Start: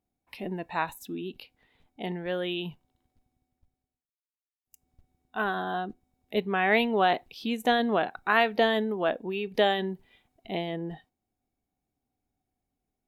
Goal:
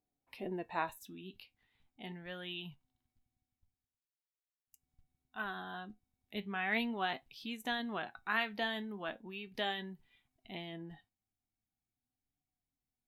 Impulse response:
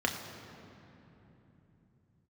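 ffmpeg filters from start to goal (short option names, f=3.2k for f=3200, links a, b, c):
-af "asetnsamples=n=441:p=0,asendcmd='0.91 equalizer g -11',equalizer=f=490:t=o:w=1.5:g=3,flanger=delay=6.6:depth=3.8:regen=64:speed=0.4:shape=triangular,volume=-3.5dB"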